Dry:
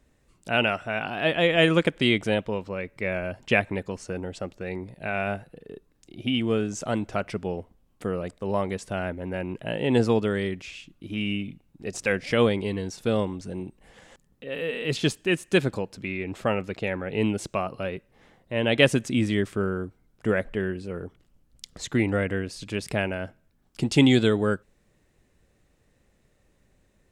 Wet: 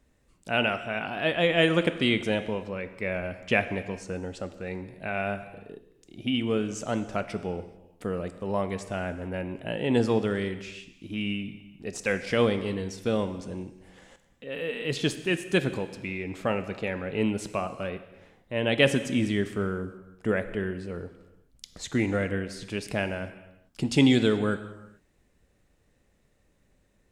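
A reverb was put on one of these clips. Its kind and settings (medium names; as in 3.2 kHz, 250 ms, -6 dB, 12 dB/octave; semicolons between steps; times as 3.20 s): gated-style reverb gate 460 ms falling, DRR 10 dB; trim -2.5 dB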